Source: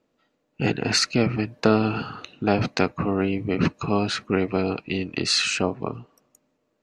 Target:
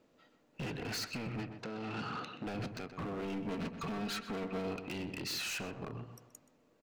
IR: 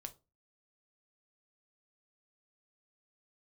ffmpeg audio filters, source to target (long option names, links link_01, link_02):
-filter_complex "[0:a]asettb=1/sr,asplit=3[link_01][link_02][link_03];[link_01]atrim=end=3.224[link_04];[link_02]atrim=start=3.22:end=4.67,asetpts=PTS-STARTPTS,afade=type=in:duration=0.004:curve=qsin,afade=type=out:start_time=1.446:duration=0.004:curve=qsin,aecho=1:1:4.4:0.87,atrim=end_sample=63945[link_05];[link_03]atrim=start=4.666[link_06];[link_04][link_05]acrossfade=duration=0.004:curve1=hsin:curve2=qsin[link_07];[link_07][link_06]acrossfade=duration=0.004:curve1=qsin:curve2=hsin,acompressor=threshold=-34dB:ratio=5,alimiter=limit=-23.5dB:level=0:latency=1:release=250,asoftclip=type=hard:threshold=-39dB,asettb=1/sr,asplit=3[link_08][link_09][link_10];[link_08]atrim=end=1.424[link_11];[link_09]atrim=start=1.42:end=2.47,asetpts=PTS-STARTPTS,afade=type=in:duration=0.004:curve=qsin,afade=type=out:start_time=1.046:duration=0.004:curve=qsin,highpass=120,lowpass=6800[link_12];[link_10]atrim=start=2.466[link_13];[link_11][link_12]acrossfade=duration=0.004:curve1=hsin:curve2=qsin[link_14];[link_14][link_13]acrossfade=duration=0.004:curve1=qsin:curve2=hsin,asplit=2[link_15][link_16];[link_16]adelay=127,lowpass=frequency=2200:poles=1,volume=-8dB,asplit=2[link_17][link_18];[link_18]adelay=127,lowpass=frequency=2200:poles=1,volume=0.26,asplit=2[link_19][link_20];[link_20]adelay=127,lowpass=frequency=2200:poles=1,volume=0.26[link_21];[link_17][link_19][link_21]amix=inputs=3:normalize=0[link_22];[link_15][link_22]amix=inputs=2:normalize=0,volume=2.5dB"